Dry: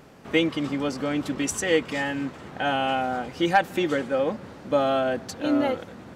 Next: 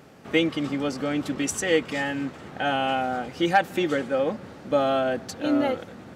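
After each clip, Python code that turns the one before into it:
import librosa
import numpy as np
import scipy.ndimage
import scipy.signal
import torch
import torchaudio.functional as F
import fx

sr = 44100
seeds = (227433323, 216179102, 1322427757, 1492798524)

y = scipy.signal.sosfilt(scipy.signal.butter(2, 61.0, 'highpass', fs=sr, output='sos'), x)
y = fx.notch(y, sr, hz=1000.0, q=16.0)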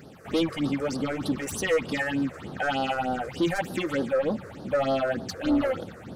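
y = 10.0 ** (-22.5 / 20.0) * np.tanh(x / 10.0 ** (-22.5 / 20.0))
y = fx.phaser_stages(y, sr, stages=6, low_hz=210.0, high_hz=2300.0, hz=3.3, feedback_pct=25)
y = F.gain(torch.from_numpy(y), 4.0).numpy()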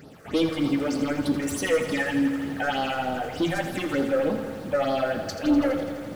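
y = fx.rev_fdn(x, sr, rt60_s=0.55, lf_ratio=0.75, hf_ratio=0.95, size_ms=20.0, drr_db=9.0)
y = fx.echo_crushed(y, sr, ms=83, feedback_pct=80, bits=8, wet_db=-10.0)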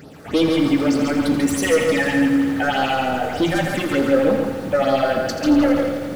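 y = x + 10.0 ** (-4.5 / 20.0) * np.pad(x, (int(141 * sr / 1000.0), 0))[:len(x)]
y = F.gain(torch.from_numpy(y), 5.5).numpy()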